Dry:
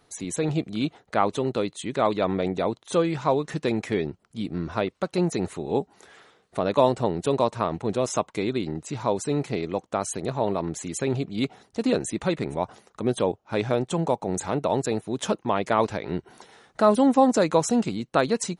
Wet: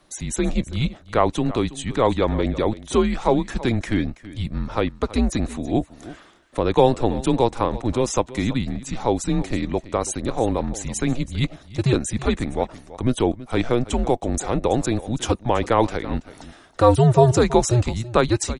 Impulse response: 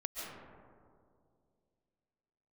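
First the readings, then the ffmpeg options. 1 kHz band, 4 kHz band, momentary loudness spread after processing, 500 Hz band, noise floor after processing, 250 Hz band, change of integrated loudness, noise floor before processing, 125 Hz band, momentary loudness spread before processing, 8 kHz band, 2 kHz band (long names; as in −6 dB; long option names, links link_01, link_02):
+2.5 dB, +4.0 dB, 9 LU, +2.5 dB, −49 dBFS, +3.5 dB, +3.5 dB, −64 dBFS, +8.5 dB, 9 LU, +4.0 dB, +3.0 dB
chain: -af "afreqshift=-120,aecho=1:1:328:0.141,volume=4dB"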